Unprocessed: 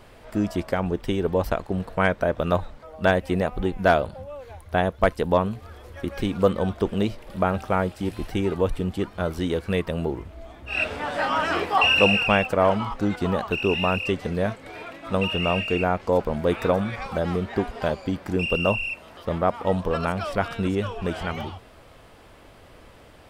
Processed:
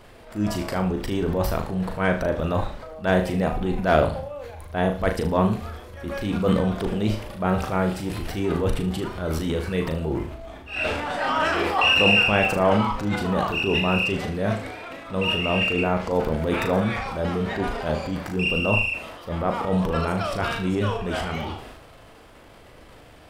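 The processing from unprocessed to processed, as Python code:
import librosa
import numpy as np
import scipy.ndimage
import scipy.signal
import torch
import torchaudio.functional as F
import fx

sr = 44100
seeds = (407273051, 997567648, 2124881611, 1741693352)

y = fx.transient(x, sr, attack_db=-8, sustain_db=8)
y = fx.room_flutter(y, sr, wall_m=6.5, rt60_s=0.37)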